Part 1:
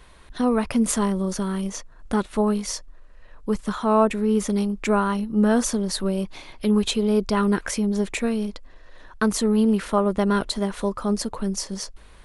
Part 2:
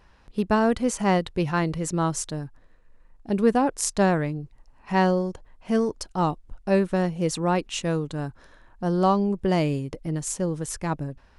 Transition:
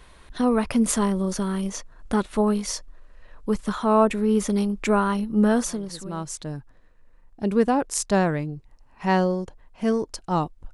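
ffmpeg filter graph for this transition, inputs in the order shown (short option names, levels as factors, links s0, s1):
-filter_complex "[0:a]apad=whole_dur=10.73,atrim=end=10.73,atrim=end=6.56,asetpts=PTS-STARTPTS[s0];[1:a]atrim=start=1.33:end=6.6,asetpts=PTS-STARTPTS[s1];[s0][s1]acrossfade=d=1.1:c1=qua:c2=qua"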